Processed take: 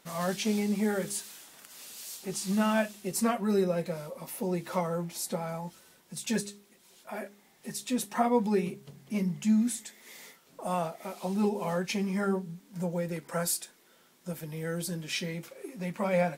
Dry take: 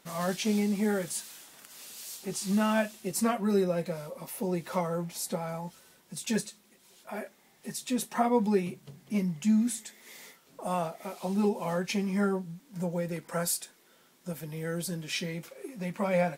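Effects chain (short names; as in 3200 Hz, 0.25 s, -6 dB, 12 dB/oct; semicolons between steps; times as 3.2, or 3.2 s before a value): de-hum 67.66 Hz, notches 6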